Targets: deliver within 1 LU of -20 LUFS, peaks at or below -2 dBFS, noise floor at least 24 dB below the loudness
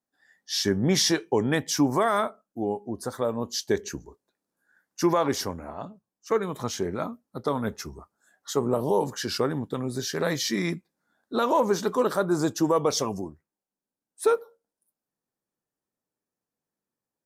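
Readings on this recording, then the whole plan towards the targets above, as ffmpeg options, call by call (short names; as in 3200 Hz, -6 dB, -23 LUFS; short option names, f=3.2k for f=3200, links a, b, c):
loudness -26.5 LUFS; peak -12.0 dBFS; loudness target -20.0 LUFS
-> -af "volume=6.5dB"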